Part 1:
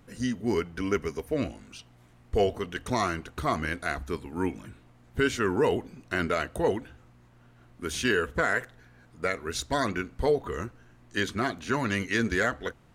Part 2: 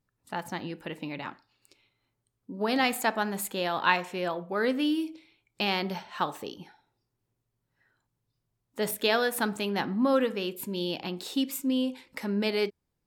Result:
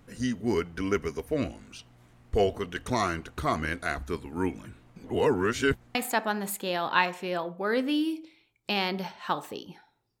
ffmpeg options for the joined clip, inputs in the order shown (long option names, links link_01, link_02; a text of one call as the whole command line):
ffmpeg -i cue0.wav -i cue1.wav -filter_complex "[0:a]apad=whole_dur=10.2,atrim=end=10.2,asplit=2[link_01][link_02];[link_01]atrim=end=4.962[link_03];[link_02]atrim=start=4.958:end=5.952,asetpts=PTS-STARTPTS,areverse[link_04];[1:a]atrim=start=2.858:end=7.11[link_05];[link_03][link_04]acrossfade=duration=0.004:curve1=hsin:curve2=hsin[link_06];[link_06][link_05]acrossfade=duration=0.004:curve1=hsin:curve2=hsin" out.wav